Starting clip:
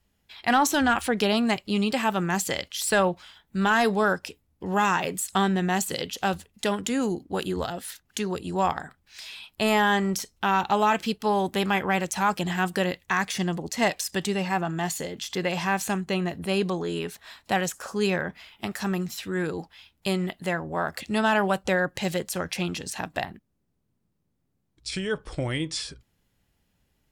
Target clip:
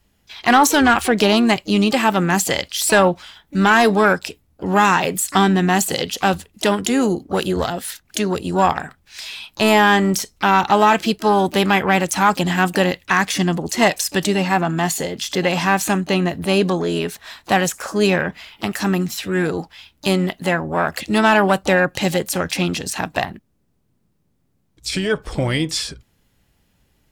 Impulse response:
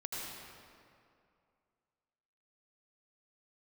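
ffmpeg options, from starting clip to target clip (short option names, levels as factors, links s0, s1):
-filter_complex "[0:a]acontrast=67,asplit=2[s0][s1];[s1]asetrate=66075,aresample=44100,atempo=0.66742,volume=0.178[s2];[s0][s2]amix=inputs=2:normalize=0,volume=1.26"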